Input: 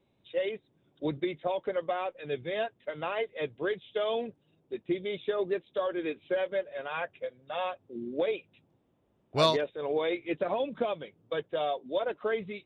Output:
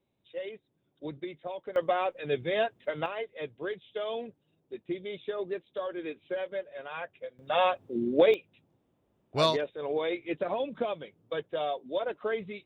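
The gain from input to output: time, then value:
-7 dB
from 1.76 s +4 dB
from 3.06 s -4 dB
from 7.39 s +8 dB
from 8.34 s -1 dB

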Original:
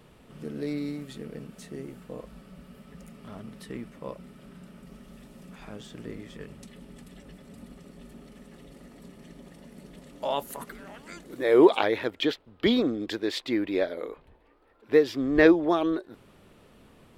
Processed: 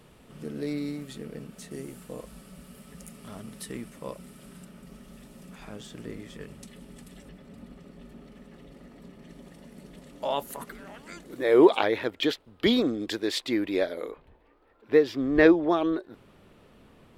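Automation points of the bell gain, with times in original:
bell 10000 Hz 1.7 oct
+4 dB
from 1.71 s +13 dB
from 4.65 s +4.5 dB
from 7.29 s -7.5 dB
from 9.29 s 0 dB
from 12.23 s +7.5 dB
from 14.11 s -4.5 dB

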